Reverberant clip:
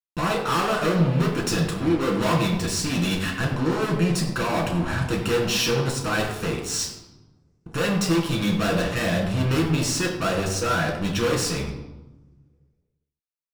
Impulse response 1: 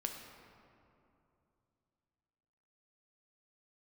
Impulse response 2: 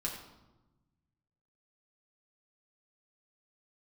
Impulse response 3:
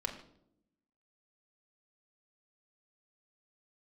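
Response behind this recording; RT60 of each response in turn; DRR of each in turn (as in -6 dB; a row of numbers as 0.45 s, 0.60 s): 2; 2.8 s, 1.1 s, 0.75 s; 2.5 dB, -2.0 dB, 1.5 dB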